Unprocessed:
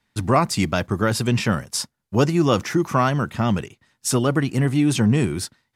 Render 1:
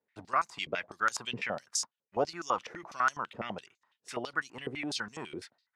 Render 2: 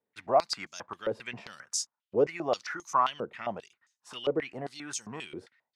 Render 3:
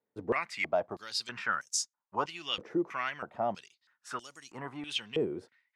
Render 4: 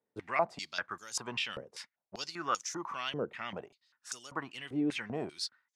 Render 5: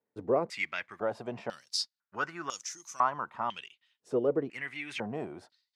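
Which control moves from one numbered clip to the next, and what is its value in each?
stepped band-pass, rate: 12, 7.5, 3.1, 5.1, 2 Hz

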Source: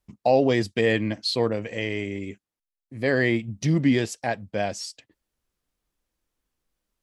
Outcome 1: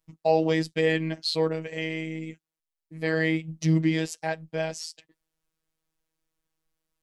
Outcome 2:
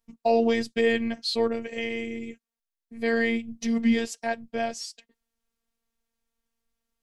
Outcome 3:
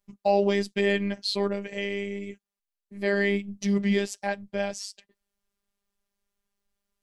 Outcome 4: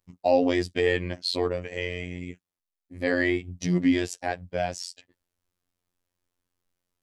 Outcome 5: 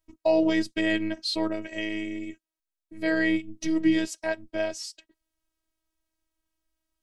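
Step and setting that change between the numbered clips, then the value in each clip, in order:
robotiser, frequency: 160, 230, 200, 89, 320 Hz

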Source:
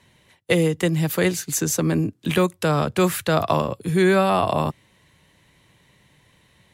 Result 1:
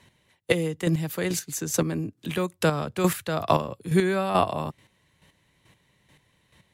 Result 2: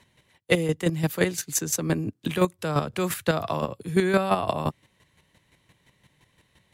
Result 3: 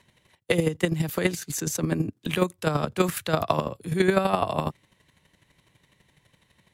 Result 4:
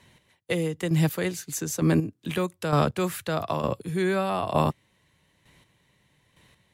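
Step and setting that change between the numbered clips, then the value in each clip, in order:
chopper, rate: 2.3, 5.8, 12, 1.1 Hz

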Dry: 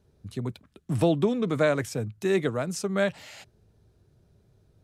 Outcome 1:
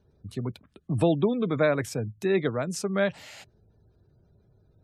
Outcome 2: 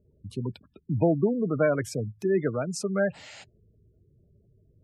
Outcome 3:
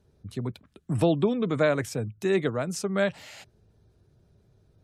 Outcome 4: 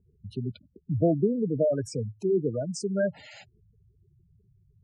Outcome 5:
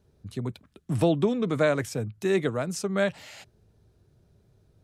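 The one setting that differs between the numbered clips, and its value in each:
spectral gate, under each frame's peak: -35, -20, -45, -10, -60 dB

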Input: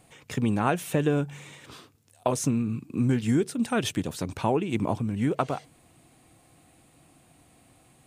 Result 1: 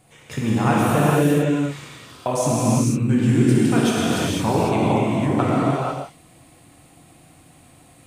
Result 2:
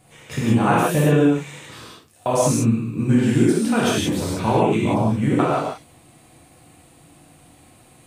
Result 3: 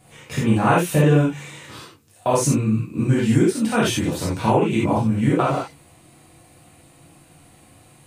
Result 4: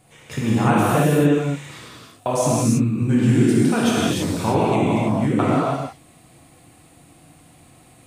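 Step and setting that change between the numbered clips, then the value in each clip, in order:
non-linear reverb, gate: 0.53, 0.21, 0.11, 0.36 s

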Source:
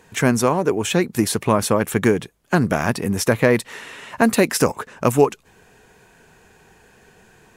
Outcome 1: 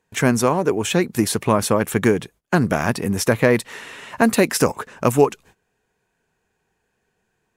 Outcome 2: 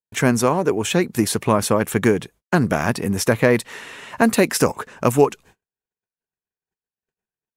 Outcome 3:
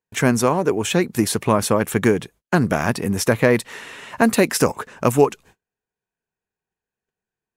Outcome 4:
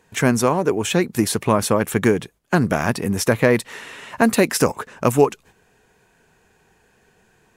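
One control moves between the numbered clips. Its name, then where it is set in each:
gate, range: -20, -52, -38, -7 dB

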